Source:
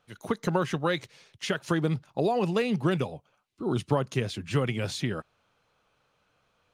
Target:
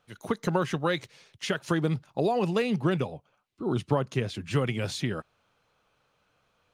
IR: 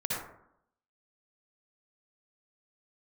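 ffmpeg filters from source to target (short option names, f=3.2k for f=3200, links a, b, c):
-filter_complex "[0:a]asettb=1/sr,asplit=3[a][b][c];[a]atrim=end=2.794[d];[b]atrim=start=2.79:end=4.35,asetpts=PTS-STARTPTS,afade=t=in:d=0.004:c=qsin,afade=t=out:st=1.556:d=0.004:c=qsin,highshelf=f=4.6k:g=-5.5[e];[c]atrim=start=4.346[f];[d][e]acrossfade=d=0.004:c1=hsin:c2=qsin[g];[g][f]acrossfade=d=0.004:c1=qsin:c2=hsin"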